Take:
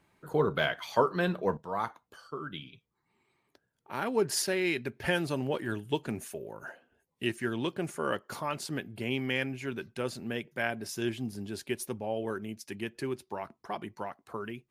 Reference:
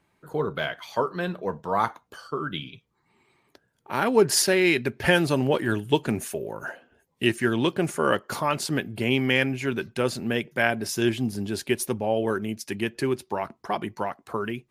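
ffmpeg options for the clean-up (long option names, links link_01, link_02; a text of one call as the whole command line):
ffmpeg -i in.wav -af "asetnsamples=nb_out_samples=441:pad=0,asendcmd='1.57 volume volume 9dB',volume=0dB" out.wav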